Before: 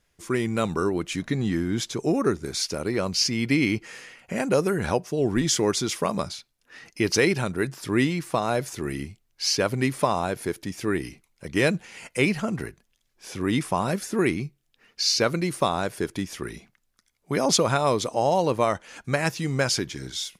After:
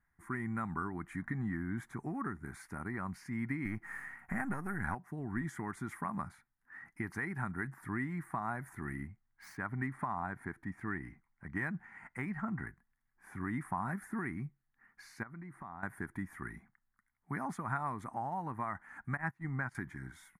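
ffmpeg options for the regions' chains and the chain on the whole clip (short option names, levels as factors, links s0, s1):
-filter_complex "[0:a]asettb=1/sr,asplit=3[s0][s1][s2];[s0]atrim=end=3.654[s3];[s1]atrim=start=3.65:end=4.95,asetpts=PTS-STARTPTS,afade=t=in:d=0.004:c=qsin,afade=t=out:st=1.296:d=0.004:c=qsin,aeval=exprs='if(lt(val(0),0),0.447*val(0),val(0))':c=same,acontrast=73,highshelf=f=6200:g=5.5[s4];[s2]atrim=start=4.946[s5];[s3][s4]acrossfade=d=0.004:c1=hsin:c2=qsin[s6];[s6][s5]acrossfade=d=0.004:c1=qsin:c2=hsin,asettb=1/sr,asplit=3[s7][s8][s9];[s7]atrim=end=9.074[s10];[s8]atrim=start=9.07:end=12.67,asetpts=PTS-STARTPTS,afade=t=in:d=0.004:c=qsin,afade=t=out:st=3.596:d=0.004:c=qsin,highshelf=f=5700:g=8,adynamicsmooth=sensitivity=1.5:basefreq=4300[s11];[s9]atrim=start=12.666[s12];[s10][s11]acrossfade=d=0.004:c1=hsin:c2=qsin[s13];[s13][s12]acrossfade=d=0.004:c1=qsin:c2=hsin,asettb=1/sr,asplit=3[s14][s15][s16];[s14]atrim=end=15.234[s17];[s15]atrim=start=15.23:end=15.83,asetpts=PTS-STARTPTS,afade=t=in:d=0.004:c=qsin,afade=t=out:st=0.596:d=0.004:c=qsin,lowpass=f=2300:p=1,acompressor=threshold=0.0126:ratio=3:attack=3.2:release=140:knee=1:detection=peak[s18];[s16]atrim=start=15.826[s19];[s17][s18]acrossfade=d=0.004:c1=hsin:c2=qsin[s20];[s20][s19]acrossfade=d=0.004:c1=qsin:c2=hsin,asettb=1/sr,asplit=3[s21][s22][s23];[s21]atrim=end=19.174[s24];[s22]atrim=start=19.17:end=19.75,asetpts=PTS-STARTPTS,afade=t=in:d=0.004:c=qsin,afade=t=out:st=0.576:d=0.004:c=qsin,lowpass=f=3300:p=1,agate=range=0.126:threshold=0.0398:ratio=16:release=100:detection=peak[s25];[s23]atrim=start=19.746[s26];[s24][s25]acrossfade=d=0.004:c1=hsin:c2=qsin[s27];[s27][s26]acrossfade=d=0.004:c1=qsin:c2=hsin,acompressor=threshold=0.0708:ratio=6,firequalizer=gain_entry='entry(240,0);entry(510,-20);entry(780,2);entry(1900,5);entry(2700,-23);entry(5100,-29);entry(9400,-9)':delay=0.05:min_phase=1,volume=0.398"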